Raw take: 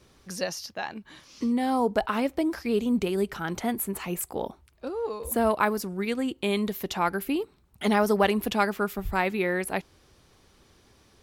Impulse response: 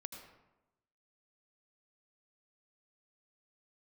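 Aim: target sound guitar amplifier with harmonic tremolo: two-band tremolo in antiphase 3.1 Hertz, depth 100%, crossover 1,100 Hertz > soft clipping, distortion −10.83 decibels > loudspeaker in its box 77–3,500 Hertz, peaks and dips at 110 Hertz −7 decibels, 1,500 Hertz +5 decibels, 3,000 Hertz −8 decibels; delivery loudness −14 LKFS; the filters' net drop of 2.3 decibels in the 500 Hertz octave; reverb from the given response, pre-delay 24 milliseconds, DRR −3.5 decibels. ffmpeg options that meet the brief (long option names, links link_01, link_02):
-filter_complex "[0:a]equalizer=frequency=500:width_type=o:gain=-3,asplit=2[link_01][link_02];[1:a]atrim=start_sample=2205,adelay=24[link_03];[link_02][link_03]afir=irnorm=-1:irlink=0,volume=7dB[link_04];[link_01][link_04]amix=inputs=2:normalize=0,acrossover=split=1100[link_05][link_06];[link_05]aeval=exprs='val(0)*(1-1/2+1/2*cos(2*PI*3.1*n/s))':channel_layout=same[link_07];[link_06]aeval=exprs='val(0)*(1-1/2-1/2*cos(2*PI*3.1*n/s))':channel_layout=same[link_08];[link_07][link_08]amix=inputs=2:normalize=0,asoftclip=threshold=-21dB,highpass=77,equalizer=frequency=110:width_type=q:width=4:gain=-7,equalizer=frequency=1500:width_type=q:width=4:gain=5,equalizer=frequency=3000:width_type=q:width=4:gain=-8,lowpass=frequency=3500:width=0.5412,lowpass=frequency=3500:width=1.3066,volume=16.5dB"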